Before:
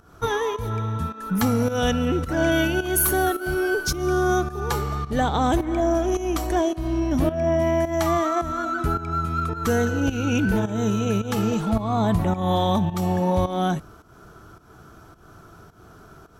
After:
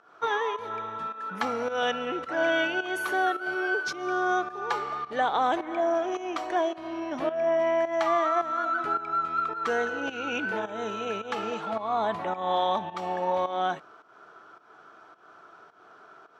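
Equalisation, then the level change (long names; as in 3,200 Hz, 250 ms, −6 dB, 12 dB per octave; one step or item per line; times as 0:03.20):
band-pass filter 580–3,100 Hz
0.0 dB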